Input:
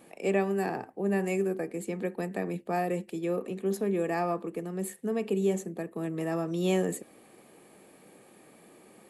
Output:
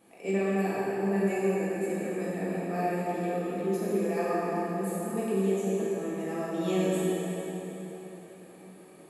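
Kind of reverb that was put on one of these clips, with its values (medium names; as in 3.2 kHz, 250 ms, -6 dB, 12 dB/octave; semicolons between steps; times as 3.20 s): plate-style reverb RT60 4.2 s, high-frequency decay 0.75×, DRR -9 dB; trim -8.5 dB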